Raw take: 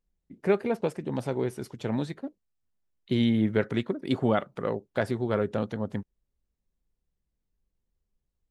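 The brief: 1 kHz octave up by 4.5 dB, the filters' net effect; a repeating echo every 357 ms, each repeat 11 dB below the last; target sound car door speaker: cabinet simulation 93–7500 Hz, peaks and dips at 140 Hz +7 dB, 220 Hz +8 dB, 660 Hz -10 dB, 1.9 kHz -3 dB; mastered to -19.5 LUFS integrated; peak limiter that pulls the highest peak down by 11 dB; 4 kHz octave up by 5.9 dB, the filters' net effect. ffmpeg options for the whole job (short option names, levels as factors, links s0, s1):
-af "equalizer=f=1000:t=o:g=8.5,equalizer=f=4000:t=o:g=7,alimiter=limit=0.133:level=0:latency=1,highpass=93,equalizer=f=140:t=q:w=4:g=7,equalizer=f=220:t=q:w=4:g=8,equalizer=f=660:t=q:w=4:g=-10,equalizer=f=1900:t=q:w=4:g=-3,lowpass=f=7500:w=0.5412,lowpass=f=7500:w=1.3066,aecho=1:1:357|714|1071:0.282|0.0789|0.0221,volume=2.66"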